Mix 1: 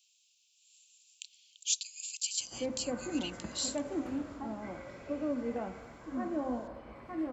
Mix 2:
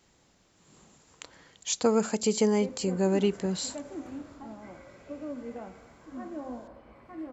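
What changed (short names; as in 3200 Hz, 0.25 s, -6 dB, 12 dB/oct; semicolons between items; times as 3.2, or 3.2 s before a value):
speech: remove steep high-pass 2500 Hz 96 dB/oct; background -4.0 dB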